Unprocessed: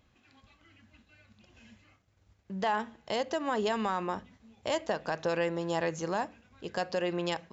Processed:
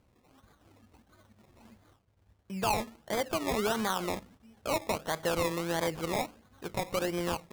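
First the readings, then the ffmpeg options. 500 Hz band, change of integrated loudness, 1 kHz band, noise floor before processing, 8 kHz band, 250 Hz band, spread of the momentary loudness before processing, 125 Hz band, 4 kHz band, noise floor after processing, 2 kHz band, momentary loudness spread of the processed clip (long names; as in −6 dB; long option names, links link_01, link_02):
−0.5 dB, +0.5 dB, −0.5 dB, −68 dBFS, can't be measured, 0.0 dB, 9 LU, +2.0 dB, +2.0 dB, −69 dBFS, 0.0 dB, 9 LU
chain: -af "acrusher=samples=23:mix=1:aa=0.000001:lfo=1:lforange=13.8:lforate=1.5"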